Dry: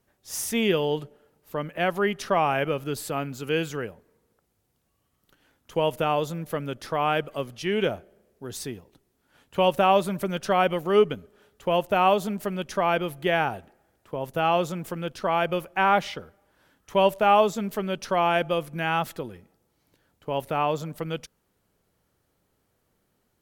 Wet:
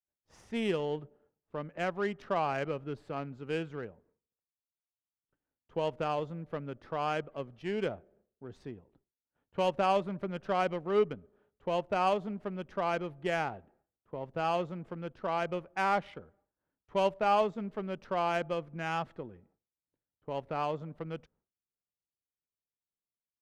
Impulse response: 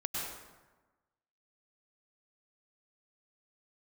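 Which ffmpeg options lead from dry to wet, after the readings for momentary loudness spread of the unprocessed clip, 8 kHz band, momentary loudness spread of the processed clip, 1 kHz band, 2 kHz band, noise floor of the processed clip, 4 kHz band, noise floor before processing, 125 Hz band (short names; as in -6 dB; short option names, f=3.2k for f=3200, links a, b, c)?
14 LU, under -15 dB, 15 LU, -8.5 dB, -9.5 dB, under -85 dBFS, -11.5 dB, -73 dBFS, -8.0 dB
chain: -af "adynamicsmooth=sensitivity=1.5:basefreq=1.5k,agate=range=-33dB:threshold=-56dB:ratio=3:detection=peak,volume=-8dB"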